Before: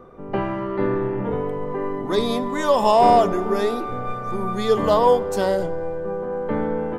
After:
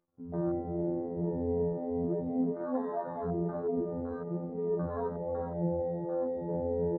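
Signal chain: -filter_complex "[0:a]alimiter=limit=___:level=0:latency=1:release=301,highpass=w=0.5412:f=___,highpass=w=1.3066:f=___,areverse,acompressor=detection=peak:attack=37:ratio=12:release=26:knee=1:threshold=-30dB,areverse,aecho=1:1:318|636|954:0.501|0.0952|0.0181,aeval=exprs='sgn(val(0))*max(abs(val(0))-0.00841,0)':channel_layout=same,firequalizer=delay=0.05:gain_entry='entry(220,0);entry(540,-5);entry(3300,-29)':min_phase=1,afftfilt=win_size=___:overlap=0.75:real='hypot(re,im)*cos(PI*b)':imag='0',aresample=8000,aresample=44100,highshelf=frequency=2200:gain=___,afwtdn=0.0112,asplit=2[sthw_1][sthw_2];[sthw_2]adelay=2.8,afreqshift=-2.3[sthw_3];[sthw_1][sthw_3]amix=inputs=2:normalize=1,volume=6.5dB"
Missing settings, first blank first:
-13dB, 68, 68, 2048, -6.5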